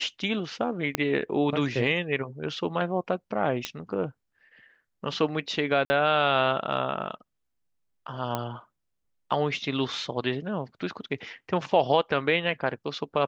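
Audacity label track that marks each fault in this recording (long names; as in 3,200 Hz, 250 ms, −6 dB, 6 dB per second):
0.950000	0.950000	click −8 dBFS
3.650000	3.650000	click −12 dBFS
5.850000	5.900000	drop-out 50 ms
8.350000	8.350000	click −14 dBFS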